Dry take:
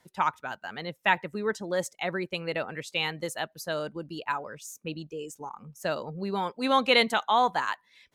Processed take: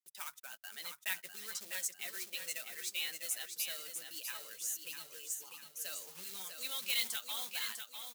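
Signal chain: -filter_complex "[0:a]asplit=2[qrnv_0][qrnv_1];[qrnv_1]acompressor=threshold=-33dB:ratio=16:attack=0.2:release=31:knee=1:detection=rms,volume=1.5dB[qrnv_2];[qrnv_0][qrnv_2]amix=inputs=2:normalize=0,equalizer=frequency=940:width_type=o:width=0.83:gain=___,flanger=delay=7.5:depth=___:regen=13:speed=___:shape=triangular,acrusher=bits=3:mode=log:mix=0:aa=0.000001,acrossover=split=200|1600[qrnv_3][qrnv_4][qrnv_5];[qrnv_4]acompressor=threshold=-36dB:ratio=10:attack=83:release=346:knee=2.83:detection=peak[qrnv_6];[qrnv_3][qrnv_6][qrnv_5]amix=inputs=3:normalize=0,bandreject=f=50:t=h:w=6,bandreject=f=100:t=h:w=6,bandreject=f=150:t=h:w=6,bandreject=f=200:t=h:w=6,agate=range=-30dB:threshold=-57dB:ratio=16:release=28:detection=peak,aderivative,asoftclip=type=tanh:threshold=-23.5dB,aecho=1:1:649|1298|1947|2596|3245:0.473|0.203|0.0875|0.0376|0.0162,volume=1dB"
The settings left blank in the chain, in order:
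-9.5, 3.6, 0.4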